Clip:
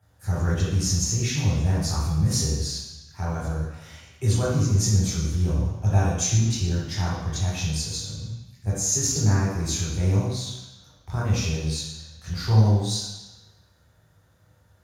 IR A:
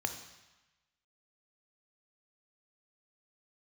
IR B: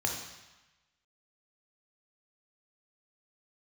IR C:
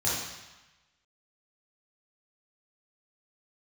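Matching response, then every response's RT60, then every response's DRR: C; 1.1, 1.1, 1.1 seconds; 6.5, 0.5, −8.0 decibels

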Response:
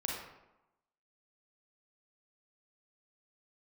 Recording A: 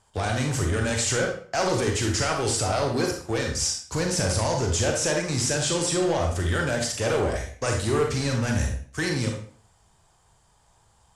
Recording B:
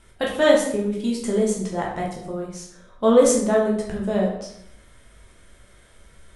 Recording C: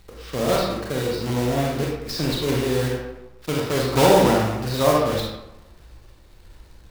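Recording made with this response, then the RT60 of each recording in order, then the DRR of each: C; 0.50, 0.75, 0.95 seconds; 1.5, −3.0, −2.5 decibels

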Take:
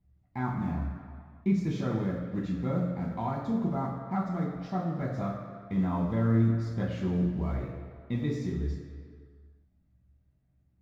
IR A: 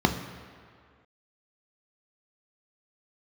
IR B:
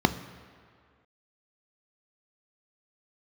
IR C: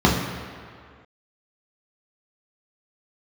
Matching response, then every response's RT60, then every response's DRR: C; 2.1, 2.1, 2.1 seconds; 5.0, 10.0, −3.5 decibels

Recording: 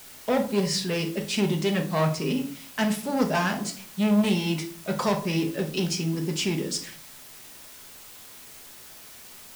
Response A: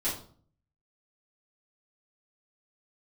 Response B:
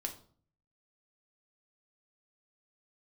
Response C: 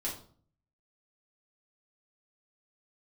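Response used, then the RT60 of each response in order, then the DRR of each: B; 0.50, 0.50, 0.50 seconds; −10.5, 3.5, −4.5 decibels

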